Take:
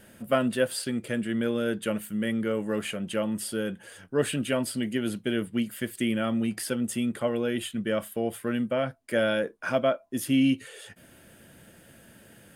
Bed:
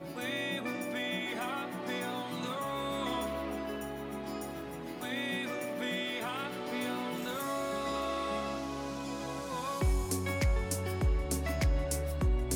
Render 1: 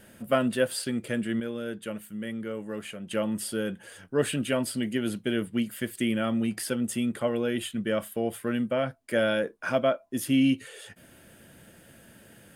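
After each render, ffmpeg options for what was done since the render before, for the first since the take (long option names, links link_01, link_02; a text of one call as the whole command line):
ffmpeg -i in.wav -filter_complex "[0:a]asplit=3[link_01][link_02][link_03];[link_01]atrim=end=1.402[link_04];[link_02]atrim=start=1.398:end=3.112,asetpts=PTS-STARTPTS,volume=-6.5dB[link_05];[link_03]atrim=start=3.108[link_06];[link_04][link_05]acrossfade=duration=0.004:curve1=hsin:curve2=hsin[link_07];[link_07][link_06]acrossfade=duration=0.004:curve1=hsin:curve2=hsin" out.wav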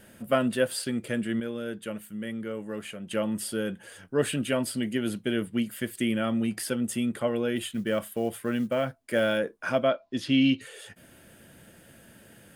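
ffmpeg -i in.wav -filter_complex "[0:a]asettb=1/sr,asplit=3[link_01][link_02][link_03];[link_01]atrim=end=7.564[link_04];[link_02]atrim=start=7.56:end=9.38,asetpts=PTS-STARTPTS,afade=type=in:duration=0.004:curve=qsin,afade=type=out:start_time=1.816:duration=0.004:curve=qsin,acrusher=bits=8:mode=log:mix=0:aa=0.000001[link_05];[link_03]atrim=start=9.376[link_06];[link_04][link_05]acrossfade=duration=0.004:curve1=hsin:curve2=qsin[link_07];[link_07][link_06]acrossfade=duration=0.004:curve1=qsin:curve2=hsin,asettb=1/sr,asplit=3[link_08][link_09][link_10];[link_08]atrim=end=9.894[link_11];[link_09]atrim=start=9.89:end=10.61,asetpts=PTS-STARTPTS,afade=type=in:duration=0.004:curve=qsin,afade=type=out:start_time=0.716:duration=0.004:curve=qsin,lowpass=frequency=4200:width_type=q:width=2.5[link_12];[link_10]atrim=start=10.606[link_13];[link_11][link_12]acrossfade=duration=0.004:curve1=hsin:curve2=qsin[link_14];[link_14][link_13]acrossfade=duration=0.004:curve1=qsin:curve2=hsin" out.wav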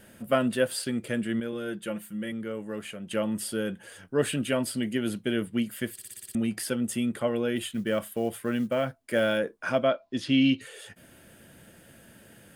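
ffmpeg -i in.wav -filter_complex "[0:a]asettb=1/sr,asplit=3[link_01][link_02][link_03];[link_01]atrim=end=1.524[link_04];[link_02]atrim=start=1.52:end=2.32,asetpts=PTS-STARTPTS,afade=type=in:duration=0.004:curve=qsin,afade=type=out:start_time=0.796:duration=0.004:curve=qsin,aecho=1:1:5.8:0.65,atrim=end_sample=35280[link_05];[link_03]atrim=start=2.316[link_06];[link_04][link_05]acrossfade=duration=0.004:curve1=hsin:curve2=qsin[link_07];[link_07][link_06]acrossfade=duration=0.004:curve1=qsin:curve2=hsin,asettb=1/sr,asplit=3[link_08][link_09][link_10];[link_08]atrim=end=9.554[link_11];[link_09]atrim=start=9.55:end=10.51,asetpts=PTS-STARTPTS,afade=type=in:duration=0.004:curve=qsin,afade=type=out:start_time=0.956:duration=0.004:curve=qsin,equalizer=frequency=12000:width=5:gain=-9[link_12];[link_10]atrim=start=10.506[link_13];[link_11][link_12]acrossfade=duration=0.004:curve1=hsin:curve2=qsin[link_14];[link_14][link_13]acrossfade=duration=0.004:curve1=qsin:curve2=hsin,asplit=8[link_15][link_16][link_17][link_18][link_19][link_20][link_21][link_22];[link_15]atrim=end=5.992[link_23];[link_16]atrim=start=5.928:end=5.992[link_24];[link_17]atrim=start=5.928:end=5.992[link_25];[link_18]atrim=start=5.928:end=5.992[link_26];[link_19]atrim=start=5.928:end=5.992[link_27];[link_20]atrim=start=5.928:end=5.992[link_28];[link_21]atrim=start=5.928:end=5.992[link_29];[link_22]atrim=start=6.348[link_30];[link_23][link_24]acrossfade=duration=0.004:curve1=hsin:curve2=hsin[link_31];[link_31][link_25]acrossfade=duration=0.004:curve1=hsin:curve2=hsin[link_32];[link_32][link_26]acrossfade=duration=0.004:curve1=hsin:curve2=hsin[link_33];[link_33][link_27]acrossfade=duration=0.004:curve1=hsin:curve2=hsin[link_34];[link_34][link_28]acrossfade=duration=0.004:curve1=hsin:curve2=hsin[link_35];[link_35][link_29]acrossfade=duration=0.004:curve1=hsin:curve2=hsin[link_36];[link_36][link_30]acrossfade=duration=0.004:curve1=hsin:curve2=hsin" out.wav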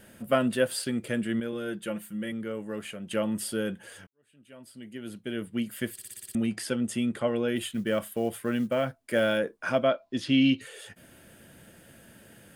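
ffmpeg -i in.wav -filter_complex "[0:a]asettb=1/sr,asplit=3[link_01][link_02][link_03];[link_01]atrim=end=6.464[link_04];[link_02]atrim=start=6.46:end=7.48,asetpts=PTS-STARTPTS,afade=type=in:duration=0.004:curve=qsin,afade=type=out:start_time=1.016:duration=0.004:curve=qsin,lowpass=8700[link_05];[link_03]atrim=start=7.476[link_06];[link_04][link_05]acrossfade=duration=0.004:curve1=hsin:curve2=qsin[link_07];[link_07][link_06]acrossfade=duration=0.004:curve1=qsin:curve2=hsin,asplit=2[link_08][link_09];[link_08]atrim=end=4.07,asetpts=PTS-STARTPTS,afade=type=out:start_time=4.066:duration=0.004:curve=hsin[link_10];[link_09]atrim=start=4.07,asetpts=PTS-STARTPTS,afade=type=in:duration=1.77:curve=qua[link_11];[link_10][link_11]concat=n=2:v=0:a=1" out.wav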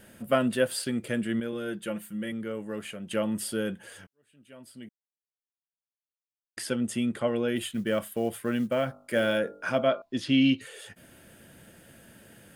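ffmpeg -i in.wav -filter_complex "[0:a]asettb=1/sr,asplit=3[link_01][link_02][link_03];[link_01]atrim=end=8.844[link_04];[link_02]atrim=start=8.84:end=10.02,asetpts=PTS-STARTPTS,afade=type=in:duration=0.004:curve=qsin,afade=type=out:start_time=1.176:duration=0.004:curve=qsin,bandreject=frequency=50.14:width_type=h:width=4,bandreject=frequency=100.28:width_type=h:width=4,bandreject=frequency=150.42:width_type=h:width=4,bandreject=frequency=200.56:width_type=h:width=4,bandreject=frequency=250.7:width_type=h:width=4,bandreject=frequency=300.84:width_type=h:width=4,bandreject=frequency=350.98:width_type=h:width=4,bandreject=frequency=401.12:width_type=h:width=4,bandreject=frequency=451.26:width_type=h:width=4,bandreject=frequency=501.4:width_type=h:width=4,bandreject=frequency=551.54:width_type=h:width=4,bandreject=frequency=601.68:width_type=h:width=4,bandreject=frequency=651.82:width_type=h:width=4,bandreject=frequency=701.96:width_type=h:width=4,bandreject=frequency=752.1:width_type=h:width=4,bandreject=frequency=802.24:width_type=h:width=4,bandreject=frequency=852.38:width_type=h:width=4,bandreject=frequency=902.52:width_type=h:width=4,bandreject=frequency=952.66:width_type=h:width=4,bandreject=frequency=1002.8:width_type=h:width=4,bandreject=frequency=1052.94:width_type=h:width=4,bandreject=frequency=1103.08:width_type=h:width=4,bandreject=frequency=1153.22:width_type=h:width=4,bandreject=frequency=1203.36:width_type=h:width=4,bandreject=frequency=1253.5:width_type=h:width=4,bandreject=frequency=1303.64:width_type=h:width=4,bandreject=frequency=1353.78:width_type=h:width=4,bandreject=frequency=1403.92:width_type=h:width=4[link_05];[link_03]atrim=start=10.016[link_06];[link_04][link_05]acrossfade=duration=0.004:curve1=hsin:curve2=qsin[link_07];[link_07][link_06]acrossfade=duration=0.004:curve1=qsin:curve2=hsin,asplit=3[link_08][link_09][link_10];[link_08]atrim=end=4.89,asetpts=PTS-STARTPTS,afade=type=out:start_time=4.886:duration=0.004:curve=hsin[link_11];[link_09]atrim=start=4.89:end=6.57,asetpts=PTS-STARTPTS,volume=0[link_12];[link_10]atrim=start=6.57,asetpts=PTS-STARTPTS,afade=type=in:duration=0.004:curve=hsin[link_13];[link_11][link_12][link_13]concat=n=3:v=0:a=1" out.wav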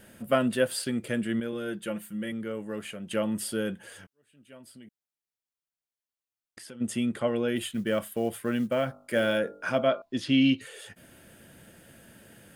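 ffmpeg -i in.wav -filter_complex "[0:a]asplit=3[link_01][link_02][link_03];[link_01]afade=type=out:start_time=4.57:duration=0.02[link_04];[link_02]acompressor=threshold=-46dB:ratio=3:attack=3.2:release=140:knee=1:detection=peak,afade=type=in:start_time=4.57:duration=0.02,afade=type=out:start_time=6.8:duration=0.02[link_05];[link_03]afade=type=in:start_time=6.8:duration=0.02[link_06];[link_04][link_05][link_06]amix=inputs=3:normalize=0" out.wav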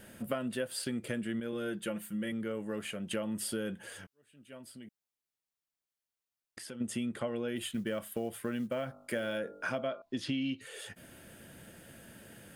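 ffmpeg -i in.wav -af "acompressor=threshold=-32dB:ratio=6" out.wav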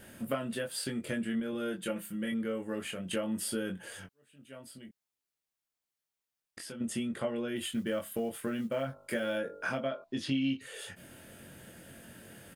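ffmpeg -i in.wav -filter_complex "[0:a]asplit=2[link_01][link_02];[link_02]adelay=22,volume=-4dB[link_03];[link_01][link_03]amix=inputs=2:normalize=0" out.wav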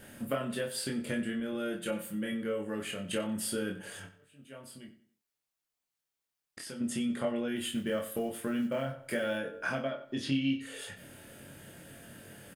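ffmpeg -i in.wav -filter_complex "[0:a]asplit=2[link_01][link_02];[link_02]adelay=29,volume=-7dB[link_03];[link_01][link_03]amix=inputs=2:normalize=0,asplit=2[link_04][link_05];[link_05]adelay=92,lowpass=frequency=4600:poles=1,volume=-13.5dB,asplit=2[link_06][link_07];[link_07]adelay=92,lowpass=frequency=4600:poles=1,volume=0.35,asplit=2[link_08][link_09];[link_09]adelay=92,lowpass=frequency=4600:poles=1,volume=0.35[link_10];[link_04][link_06][link_08][link_10]amix=inputs=4:normalize=0" out.wav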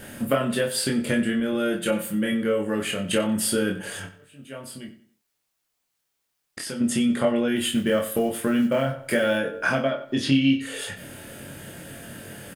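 ffmpeg -i in.wav -af "volume=10.5dB" out.wav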